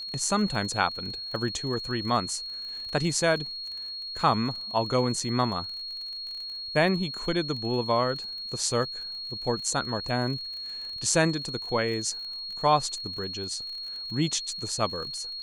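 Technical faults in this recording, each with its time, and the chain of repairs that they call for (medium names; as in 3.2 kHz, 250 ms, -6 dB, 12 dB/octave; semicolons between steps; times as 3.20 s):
crackle 35 per s -36 dBFS
whine 4.3 kHz -34 dBFS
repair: de-click; band-stop 4.3 kHz, Q 30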